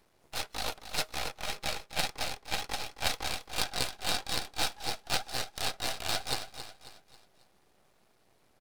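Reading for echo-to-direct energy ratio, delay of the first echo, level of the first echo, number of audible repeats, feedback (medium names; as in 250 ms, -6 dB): -10.0 dB, 271 ms, -11.0 dB, 4, 42%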